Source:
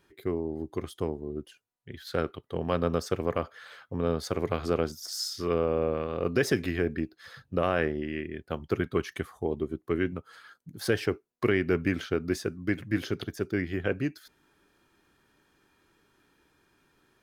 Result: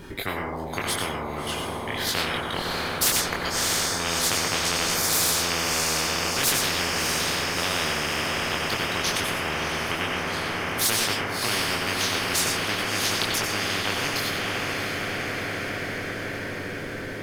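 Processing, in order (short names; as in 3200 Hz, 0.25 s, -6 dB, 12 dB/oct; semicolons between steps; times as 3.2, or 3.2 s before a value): low shelf 490 Hz +9 dB; 2.59–3.51 negative-ratio compressor -39 dBFS; chorus voices 6, 0.36 Hz, delay 23 ms, depth 4.9 ms; diffused feedback echo 0.655 s, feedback 64%, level -9 dB; plate-style reverb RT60 0.56 s, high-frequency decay 0.4×, pre-delay 80 ms, DRR 3.5 dB; spectral compressor 10:1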